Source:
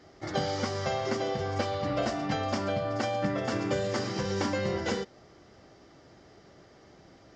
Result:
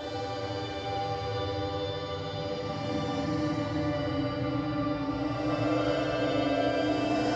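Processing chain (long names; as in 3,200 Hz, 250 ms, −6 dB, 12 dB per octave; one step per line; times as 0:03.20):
extreme stretch with random phases 20×, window 0.10 s, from 0:01.69
feedback delay network reverb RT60 1.8 s, low-frequency decay 0.85×, high-frequency decay 0.8×, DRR −6.5 dB
level −7.5 dB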